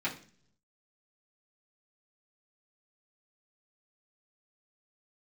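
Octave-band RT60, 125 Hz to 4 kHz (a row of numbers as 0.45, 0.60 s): 1.0, 0.80, 0.55, 0.40, 0.45, 0.50 s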